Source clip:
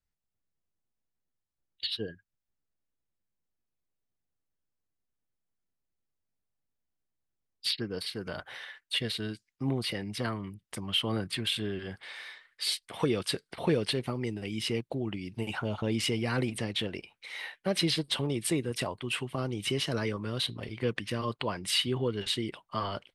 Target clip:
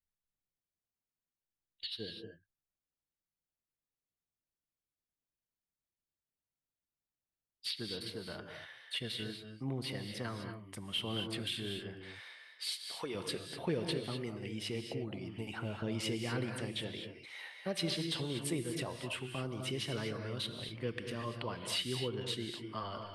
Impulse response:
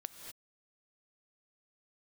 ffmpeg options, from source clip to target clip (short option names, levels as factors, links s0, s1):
-filter_complex "[0:a]asettb=1/sr,asplit=3[s0][s1][s2];[s0]atrim=end=12.484[s3];[s1]atrim=start=12.48:end=13.15,asetpts=PTS-STARTPTS,afade=t=in:d=0.004:c=qsin,afade=t=out:st=0.666:d=0.004:c=qsin,equalizer=f=100:t=o:w=2.8:g=-15[s4];[s2]atrim=start=13.146[s5];[s3][s4]acrossfade=d=0.004:c1=hsin:c2=qsin[s6];[s6][s5]acrossfade=d=0.004:c1=qsin:c2=hsin[s7];[1:a]atrim=start_sample=2205[s8];[s7][s8]afir=irnorm=-1:irlink=0,volume=0.631"